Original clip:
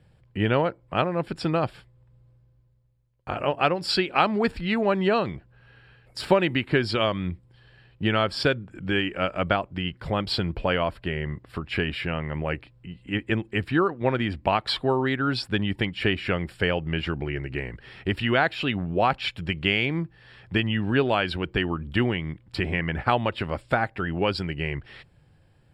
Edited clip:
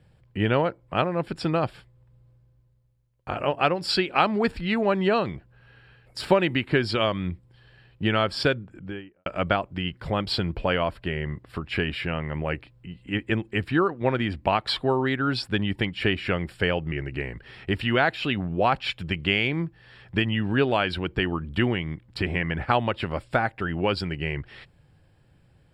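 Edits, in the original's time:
8.46–9.26 s: studio fade out
16.92–17.30 s: delete

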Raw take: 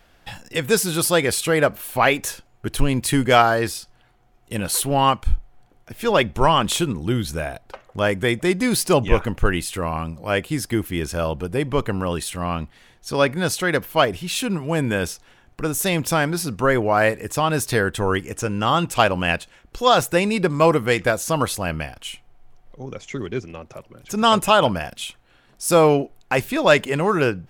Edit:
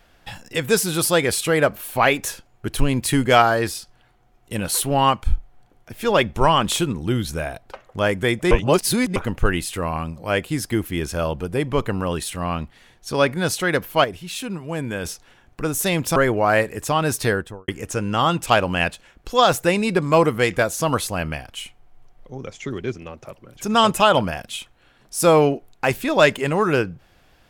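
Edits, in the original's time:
8.51–9.16 s: reverse
14.04–15.05 s: gain -5.5 dB
16.16–16.64 s: delete
17.73–18.16 s: studio fade out

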